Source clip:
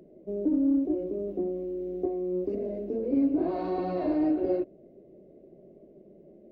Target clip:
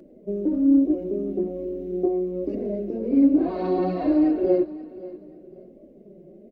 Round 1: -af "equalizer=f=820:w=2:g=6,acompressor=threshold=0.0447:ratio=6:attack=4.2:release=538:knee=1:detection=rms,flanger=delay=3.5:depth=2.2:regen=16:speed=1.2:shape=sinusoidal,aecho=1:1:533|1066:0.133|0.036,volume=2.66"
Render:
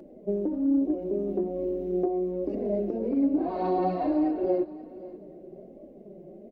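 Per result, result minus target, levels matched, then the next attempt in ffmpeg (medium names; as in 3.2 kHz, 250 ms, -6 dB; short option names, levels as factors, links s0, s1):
compression: peak gain reduction +8 dB; 1 kHz band +7.0 dB
-af "equalizer=f=820:w=2:g=6,flanger=delay=3.5:depth=2.2:regen=16:speed=1.2:shape=sinusoidal,aecho=1:1:533|1066:0.133|0.036,volume=2.66"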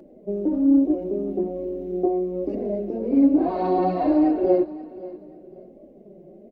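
1 kHz band +6.5 dB
-af "equalizer=f=820:w=2:g=-3,flanger=delay=3.5:depth=2.2:regen=16:speed=1.2:shape=sinusoidal,aecho=1:1:533|1066:0.133|0.036,volume=2.66"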